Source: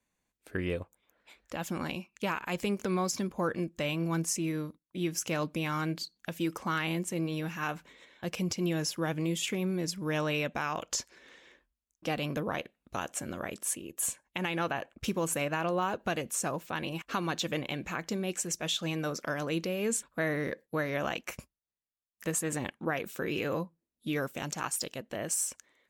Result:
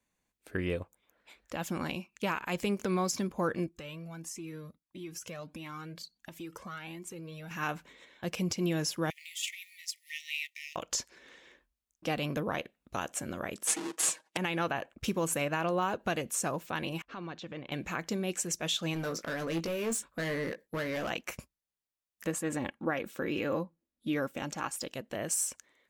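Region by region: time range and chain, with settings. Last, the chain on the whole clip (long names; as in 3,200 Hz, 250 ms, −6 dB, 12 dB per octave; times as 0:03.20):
0:03.66–0:07.51: downward compressor 5 to 1, threshold −34 dBFS + flanger whose copies keep moving one way rising 1.5 Hz
0:09.10–0:10.76: mu-law and A-law mismatch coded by A + linear-phase brick-wall high-pass 1,800 Hz
0:13.67–0:14.37: each half-wave held at its own peak + Chebyshev band-pass filter 330–8,500 Hz + comb filter 6.3 ms, depth 96%
0:17.02–0:17.72: transient designer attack −8 dB, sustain −4 dB + downward compressor 2 to 1, threshold −41 dBFS + high-frequency loss of the air 160 metres
0:18.94–0:21.10: hard clipping −30.5 dBFS + double-tracking delay 18 ms −8 dB
0:22.27–0:24.93: high-shelf EQ 3,700 Hz −7.5 dB + comb filter 3.6 ms, depth 32%
whole clip: no processing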